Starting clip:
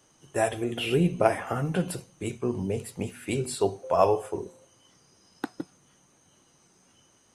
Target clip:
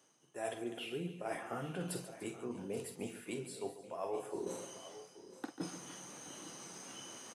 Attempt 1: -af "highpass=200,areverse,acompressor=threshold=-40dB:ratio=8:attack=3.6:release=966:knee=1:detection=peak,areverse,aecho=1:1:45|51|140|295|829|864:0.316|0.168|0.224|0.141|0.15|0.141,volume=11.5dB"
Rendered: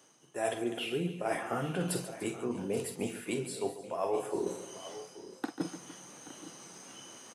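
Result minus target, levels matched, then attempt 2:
compressor: peak gain reduction -7.5 dB
-af "highpass=200,areverse,acompressor=threshold=-48.5dB:ratio=8:attack=3.6:release=966:knee=1:detection=peak,areverse,aecho=1:1:45|51|140|295|829|864:0.316|0.168|0.224|0.141|0.15|0.141,volume=11.5dB"

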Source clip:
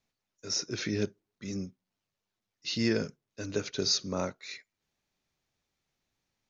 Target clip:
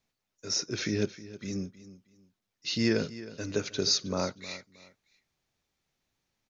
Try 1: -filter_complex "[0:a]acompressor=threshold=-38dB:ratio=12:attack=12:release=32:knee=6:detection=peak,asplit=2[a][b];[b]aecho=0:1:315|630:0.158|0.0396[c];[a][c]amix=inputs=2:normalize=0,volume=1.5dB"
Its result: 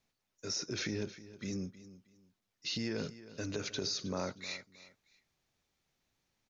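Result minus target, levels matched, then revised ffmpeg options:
compressor: peak gain reduction +13 dB
-filter_complex "[0:a]asplit=2[a][b];[b]aecho=0:1:315|630:0.158|0.0396[c];[a][c]amix=inputs=2:normalize=0,volume=1.5dB"

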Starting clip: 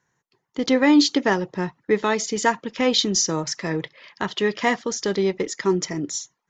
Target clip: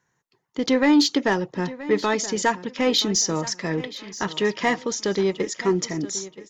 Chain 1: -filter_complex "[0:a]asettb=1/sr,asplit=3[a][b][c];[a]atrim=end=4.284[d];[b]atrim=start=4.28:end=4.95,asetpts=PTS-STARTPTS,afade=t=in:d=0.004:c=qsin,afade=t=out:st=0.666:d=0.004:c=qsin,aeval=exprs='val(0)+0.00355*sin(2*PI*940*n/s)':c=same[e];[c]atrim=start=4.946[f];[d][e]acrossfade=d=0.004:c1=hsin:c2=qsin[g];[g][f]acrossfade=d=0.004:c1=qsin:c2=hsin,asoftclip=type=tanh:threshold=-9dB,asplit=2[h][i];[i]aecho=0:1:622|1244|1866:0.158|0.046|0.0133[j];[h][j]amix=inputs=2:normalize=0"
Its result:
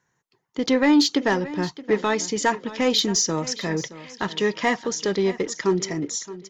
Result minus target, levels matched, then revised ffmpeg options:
echo 0.354 s early
-filter_complex "[0:a]asettb=1/sr,asplit=3[a][b][c];[a]atrim=end=4.284[d];[b]atrim=start=4.28:end=4.95,asetpts=PTS-STARTPTS,afade=t=in:d=0.004:c=qsin,afade=t=out:st=0.666:d=0.004:c=qsin,aeval=exprs='val(0)+0.00355*sin(2*PI*940*n/s)':c=same[e];[c]atrim=start=4.946[f];[d][e]acrossfade=d=0.004:c1=hsin:c2=qsin[g];[g][f]acrossfade=d=0.004:c1=qsin:c2=hsin,asoftclip=type=tanh:threshold=-9dB,asplit=2[h][i];[i]aecho=0:1:976|1952|2928:0.158|0.046|0.0133[j];[h][j]amix=inputs=2:normalize=0"

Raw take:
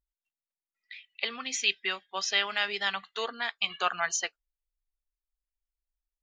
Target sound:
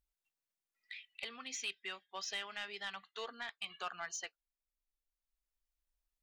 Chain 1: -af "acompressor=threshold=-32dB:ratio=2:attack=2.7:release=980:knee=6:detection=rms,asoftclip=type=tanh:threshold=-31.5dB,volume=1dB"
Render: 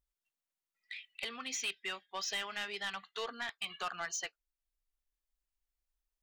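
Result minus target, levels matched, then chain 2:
compressor: peak gain reduction -5.5 dB
-af "acompressor=threshold=-43.5dB:ratio=2:attack=2.7:release=980:knee=6:detection=rms,asoftclip=type=tanh:threshold=-31.5dB,volume=1dB"

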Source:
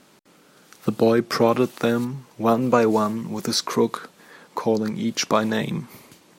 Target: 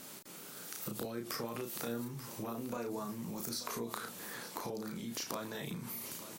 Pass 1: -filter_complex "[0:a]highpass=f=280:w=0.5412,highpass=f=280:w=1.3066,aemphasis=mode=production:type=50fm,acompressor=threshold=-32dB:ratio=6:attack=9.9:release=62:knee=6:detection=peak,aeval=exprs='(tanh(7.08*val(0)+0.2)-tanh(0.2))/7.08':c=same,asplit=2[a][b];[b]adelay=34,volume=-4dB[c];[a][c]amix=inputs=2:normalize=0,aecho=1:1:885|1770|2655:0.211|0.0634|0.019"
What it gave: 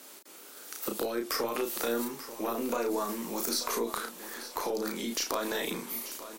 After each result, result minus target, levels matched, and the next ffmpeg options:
compressor: peak gain reduction -9.5 dB; 250 Hz band -2.5 dB
-filter_complex "[0:a]highpass=f=280:w=0.5412,highpass=f=280:w=1.3066,aemphasis=mode=production:type=50fm,acompressor=threshold=-43dB:ratio=6:attack=9.9:release=62:knee=6:detection=peak,aeval=exprs='(tanh(7.08*val(0)+0.2)-tanh(0.2))/7.08':c=same,asplit=2[a][b];[b]adelay=34,volume=-4dB[c];[a][c]amix=inputs=2:normalize=0,aecho=1:1:885|1770|2655:0.211|0.0634|0.019"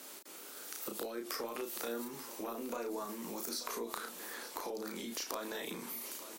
250 Hz band -2.5 dB
-filter_complex "[0:a]aemphasis=mode=production:type=50fm,acompressor=threshold=-43dB:ratio=6:attack=9.9:release=62:knee=6:detection=peak,aeval=exprs='(tanh(7.08*val(0)+0.2)-tanh(0.2))/7.08':c=same,asplit=2[a][b];[b]adelay=34,volume=-4dB[c];[a][c]amix=inputs=2:normalize=0,aecho=1:1:885|1770|2655:0.211|0.0634|0.019"

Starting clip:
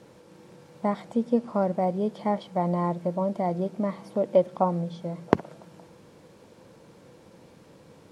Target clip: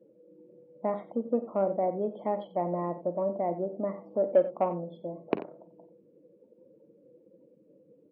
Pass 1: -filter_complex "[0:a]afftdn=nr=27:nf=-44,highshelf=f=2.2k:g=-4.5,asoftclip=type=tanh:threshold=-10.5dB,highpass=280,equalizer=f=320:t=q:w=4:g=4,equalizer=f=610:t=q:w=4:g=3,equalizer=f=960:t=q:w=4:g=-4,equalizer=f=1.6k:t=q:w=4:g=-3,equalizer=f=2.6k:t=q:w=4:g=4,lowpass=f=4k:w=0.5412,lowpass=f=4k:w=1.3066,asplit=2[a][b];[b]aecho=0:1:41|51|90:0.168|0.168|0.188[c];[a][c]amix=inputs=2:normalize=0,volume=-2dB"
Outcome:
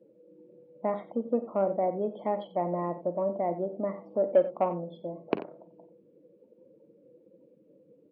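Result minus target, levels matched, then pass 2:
4000 Hz band +3.5 dB
-filter_complex "[0:a]afftdn=nr=27:nf=-44,highshelf=f=2.2k:g=-11,asoftclip=type=tanh:threshold=-10.5dB,highpass=280,equalizer=f=320:t=q:w=4:g=4,equalizer=f=610:t=q:w=4:g=3,equalizer=f=960:t=q:w=4:g=-4,equalizer=f=1.6k:t=q:w=4:g=-3,equalizer=f=2.6k:t=q:w=4:g=4,lowpass=f=4k:w=0.5412,lowpass=f=4k:w=1.3066,asplit=2[a][b];[b]aecho=0:1:41|51|90:0.168|0.168|0.188[c];[a][c]amix=inputs=2:normalize=0,volume=-2dB"

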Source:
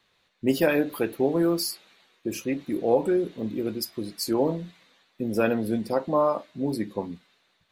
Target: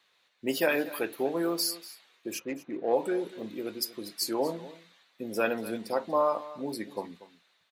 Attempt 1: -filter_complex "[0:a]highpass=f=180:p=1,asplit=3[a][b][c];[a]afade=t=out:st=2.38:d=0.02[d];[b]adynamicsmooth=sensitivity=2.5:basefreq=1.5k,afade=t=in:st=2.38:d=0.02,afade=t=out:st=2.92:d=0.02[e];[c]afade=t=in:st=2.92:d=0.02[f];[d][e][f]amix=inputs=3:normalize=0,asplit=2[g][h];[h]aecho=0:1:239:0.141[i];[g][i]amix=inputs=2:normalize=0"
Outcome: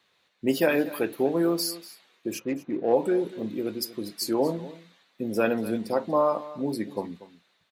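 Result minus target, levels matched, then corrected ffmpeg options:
250 Hz band +3.0 dB
-filter_complex "[0:a]highpass=f=690:p=1,asplit=3[a][b][c];[a]afade=t=out:st=2.38:d=0.02[d];[b]adynamicsmooth=sensitivity=2.5:basefreq=1.5k,afade=t=in:st=2.38:d=0.02,afade=t=out:st=2.92:d=0.02[e];[c]afade=t=in:st=2.92:d=0.02[f];[d][e][f]amix=inputs=3:normalize=0,asplit=2[g][h];[h]aecho=0:1:239:0.141[i];[g][i]amix=inputs=2:normalize=0"

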